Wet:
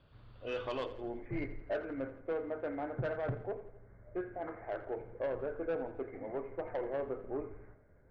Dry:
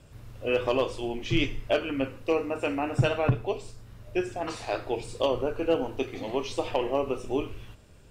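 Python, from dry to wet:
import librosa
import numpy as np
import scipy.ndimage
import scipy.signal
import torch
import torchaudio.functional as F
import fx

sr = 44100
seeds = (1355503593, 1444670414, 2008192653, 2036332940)

y = fx.cheby_ripple(x, sr, hz=fx.steps((0.0, 4700.0), (0.85, 2200.0)), ripple_db=6)
y = 10.0 ** (-24.0 / 20.0) * np.tanh(y / 10.0 ** (-24.0 / 20.0))
y = fx.echo_feedback(y, sr, ms=84, feedback_pct=56, wet_db=-15)
y = y * 10.0 ** (-5.5 / 20.0)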